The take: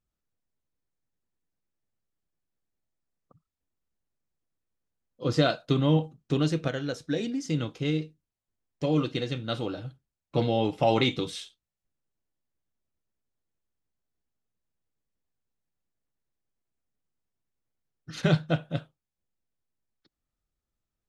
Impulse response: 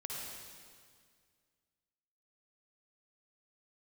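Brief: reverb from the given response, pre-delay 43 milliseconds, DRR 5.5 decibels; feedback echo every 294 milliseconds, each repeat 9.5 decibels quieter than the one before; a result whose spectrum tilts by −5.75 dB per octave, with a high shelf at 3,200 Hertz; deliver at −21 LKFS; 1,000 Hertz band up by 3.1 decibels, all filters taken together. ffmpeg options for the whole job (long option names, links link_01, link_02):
-filter_complex "[0:a]equalizer=frequency=1000:width_type=o:gain=5,highshelf=frequency=3200:gain=-4,aecho=1:1:294|588|882|1176:0.335|0.111|0.0365|0.012,asplit=2[link_01][link_02];[1:a]atrim=start_sample=2205,adelay=43[link_03];[link_02][link_03]afir=irnorm=-1:irlink=0,volume=-5.5dB[link_04];[link_01][link_04]amix=inputs=2:normalize=0,volume=5.5dB"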